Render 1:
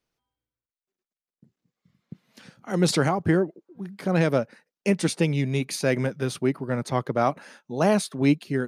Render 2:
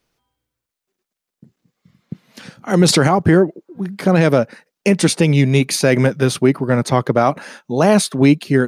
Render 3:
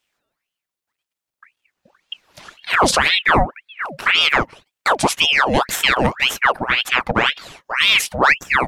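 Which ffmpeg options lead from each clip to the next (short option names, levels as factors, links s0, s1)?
-af "alimiter=level_in=4.47:limit=0.891:release=50:level=0:latency=1,volume=0.841"
-af "aeval=exprs='val(0)*sin(2*PI*1700*n/s+1700*0.8/1.9*sin(2*PI*1.9*n/s))':c=same"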